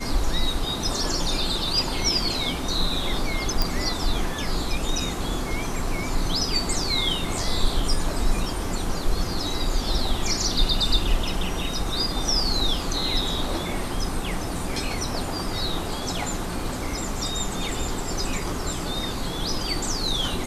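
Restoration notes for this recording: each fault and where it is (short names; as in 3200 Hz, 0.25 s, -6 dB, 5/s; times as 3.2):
3.62 pop -7 dBFS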